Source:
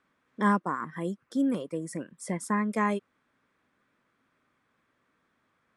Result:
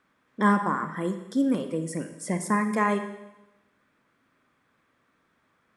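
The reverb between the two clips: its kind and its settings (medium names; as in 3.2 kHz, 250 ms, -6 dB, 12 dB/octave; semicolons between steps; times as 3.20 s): Schroeder reverb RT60 0.98 s, DRR 8 dB; trim +3.5 dB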